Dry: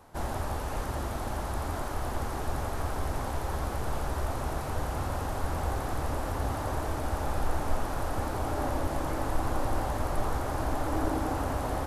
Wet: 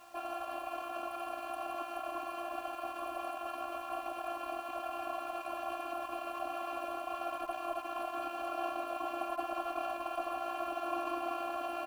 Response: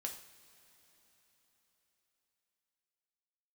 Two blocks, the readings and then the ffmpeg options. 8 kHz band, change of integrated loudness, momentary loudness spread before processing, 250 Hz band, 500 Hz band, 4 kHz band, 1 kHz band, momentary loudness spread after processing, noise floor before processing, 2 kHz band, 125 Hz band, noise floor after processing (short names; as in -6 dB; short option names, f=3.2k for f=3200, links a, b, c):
-13.5 dB, -6.0 dB, 3 LU, -9.5 dB, -4.0 dB, -4.5 dB, -3.0 dB, 3 LU, -34 dBFS, -5.0 dB, under -35 dB, -44 dBFS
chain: -filter_complex "[0:a]firequalizer=gain_entry='entry(100,0);entry(200,8);entry(5000,-21);entry(11000,0)':delay=0.05:min_phase=1,aecho=1:1:298|596|894:0.112|0.037|0.0122,aeval=exprs='max(val(0),0)':c=same,afftfilt=real='hypot(re,im)*cos(PI*b)':imag='0':win_size=512:overlap=0.75,asplit=3[a][b][c];[a]bandpass=f=730:t=q:w=8,volume=0dB[d];[b]bandpass=f=1.09k:t=q:w=8,volume=-6dB[e];[c]bandpass=f=2.44k:t=q:w=8,volume=-9dB[f];[d][e][f]amix=inputs=3:normalize=0,highshelf=f=9.4k:g=-5.5,aecho=1:1:3.6:0.74,asplit=2[g][h];[h]acompressor=threshold=-60dB:ratio=12,volume=2dB[i];[g][i]amix=inputs=2:normalize=0,crystalizer=i=9.5:c=0,acrusher=bits=10:mix=0:aa=0.000001,bandreject=f=73.88:t=h:w=4,bandreject=f=147.76:t=h:w=4,bandreject=f=221.64:t=h:w=4,bandreject=f=295.52:t=h:w=4,bandreject=f=369.4:t=h:w=4,bandreject=f=443.28:t=h:w=4,bandreject=f=517.16:t=h:w=4,bandreject=f=591.04:t=h:w=4,bandreject=f=664.92:t=h:w=4,bandreject=f=738.8:t=h:w=4,bandreject=f=812.68:t=h:w=4,bandreject=f=886.56:t=h:w=4,bandreject=f=960.44:t=h:w=4,bandreject=f=1.03432k:t=h:w=4,bandreject=f=1.1082k:t=h:w=4,bandreject=f=1.18208k:t=h:w=4,bandreject=f=1.25596k:t=h:w=4,bandreject=f=1.32984k:t=h:w=4,bandreject=f=1.40372k:t=h:w=4,bandreject=f=1.4776k:t=h:w=4,bandreject=f=1.55148k:t=h:w=4,bandreject=f=1.62536k:t=h:w=4,bandreject=f=1.69924k:t=h:w=4,bandreject=f=1.77312k:t=h:w=4,bandreject=f=1.847k:t=h:w=4,bandreject=f=1.92088k:t=h:w=4,bandreject=f=1.99476k:t=h:w=4,bandreject=f=2.06864k:t=h:w=4,bandreject=f=2.14252k:t=h:w=4,bandreject=f=2.2164k:t=h:w=4,bandreject=f=2.29028k:t=h:w=4,bandreject=f=2.36416k:t=h:w=4,bandreject=f=2.43804k:t=h:w=4,bandreject=f=2.51192k:t=h:w=4,bandreject=f=2.5858k:t=h:w=4,bandreject=f=2.65968k:t=h:w=4,bandreject=f=2.73356k:t=h:w=4,bandreject=f=2.80744k:t=h:w=4,bandreject=f=2.88132k:t=h:w=4,volume=5.5dB"